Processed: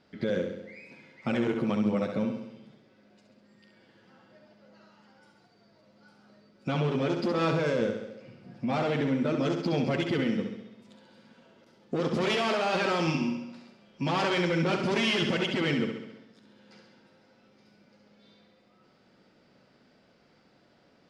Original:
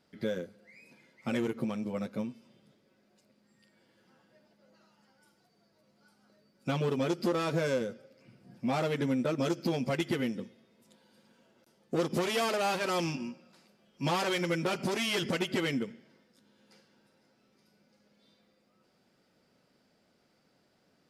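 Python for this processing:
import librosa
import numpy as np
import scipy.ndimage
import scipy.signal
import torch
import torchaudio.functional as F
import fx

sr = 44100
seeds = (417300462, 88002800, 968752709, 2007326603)

p1 = scipy.signal.sosfilt(scipy.signal.butter(2, 4600.0, 'lowpass', fs=sr, output='sos'), x)
p2 = fx.over_compress(p1, sr, threshold_db=-33.0, ratio=-0.5)
p3 = p1 + F.gain(torch.from_numpy(p2), 2.0).numpy()
p4 = fx.echo_feedback(p3, sr, ms=67, feedback_pct=58, wet_db=-6.5)
y = F.gain(torch.from_numpy(p4), -2.5).numpy()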